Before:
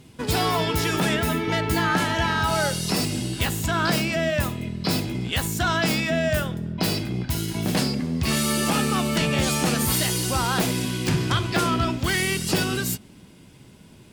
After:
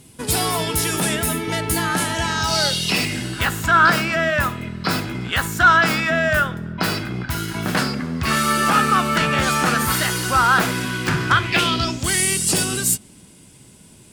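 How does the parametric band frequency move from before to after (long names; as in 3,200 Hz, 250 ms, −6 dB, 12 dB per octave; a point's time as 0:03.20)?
parametric band +14.5 dB 1 octave
0:02.11 10,000 Hz
0:03.34 1,400 Hz
0:11.32 1,400 Hz
0:12.07 8,800 Hz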